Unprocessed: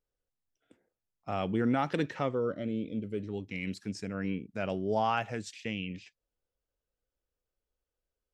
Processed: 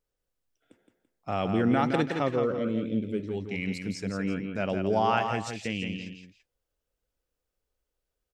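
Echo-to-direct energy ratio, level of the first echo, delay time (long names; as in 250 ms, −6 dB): −5.5 dB, −6.0 dB, 168 ms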